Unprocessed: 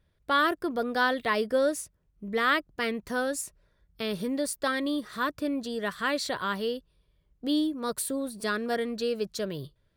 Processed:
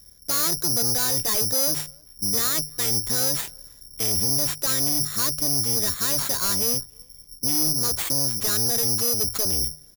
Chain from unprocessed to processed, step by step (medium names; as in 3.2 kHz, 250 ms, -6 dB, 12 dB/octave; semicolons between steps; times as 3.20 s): octave divider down 1 oct, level +3 dB; treble shelf 3.8 kHz -8.5 dB; hum notches 50/100/150 Hz; in parallel at 0 dB: compression, threshold -41 dBFS, peak gain reduction 19 dB; on the sum: peak limiter -19.5 dBFS, peak gain reduction 7.5 dB; saturation -29.5 dBFS, distortion -10 dB; careless resampling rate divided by 8×, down none, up zero stuff; speakerphone echo 310 ms, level -30 dB; trim +1.5 dB